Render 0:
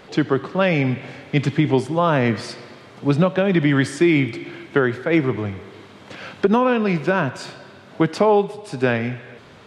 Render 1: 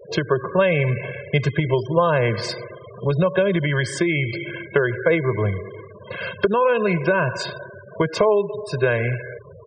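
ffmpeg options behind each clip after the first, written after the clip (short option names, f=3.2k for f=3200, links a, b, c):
-af "acompressor=threshold=-20dB:ratio=6,aecho=1:1:1.9:1,afftfilt=real='re*gte(hypot(re,im),0.0251)':imag='im*gte(hypot(re,im),0.0251)':win_size=1024:overlap=0.75,volume=3dB"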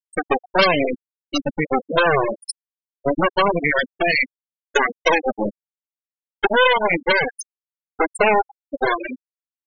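-af "aeval=exprs='0.596*(cos(1*acos(clip(val(0)/0.596,-1,1)))-cos(1*PI/2))+0.119*(cos(3*acos(clip(val(0)/0.596,-1,1)))-cos(3*PI/2))+0.168*(cos(8*acos(clip(val(0)/0.596,-1,1)))-cos(8*PI/2))':c=same,aemphasis=mode=production:type=bsi,afftfilt=real='re*gte(hypot(re,im),0.282)':imag='im*gte(hypot(re,im),0.282)':win_size=1024:overlap=0.75,volume=4dB"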